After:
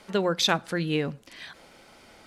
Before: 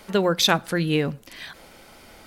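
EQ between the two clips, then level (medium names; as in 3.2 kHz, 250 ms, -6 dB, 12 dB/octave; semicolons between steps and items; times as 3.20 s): low-pass 9.1 kHz 12 dB/octave; bass shelf 61 Hz -9 dB; -4.0 dB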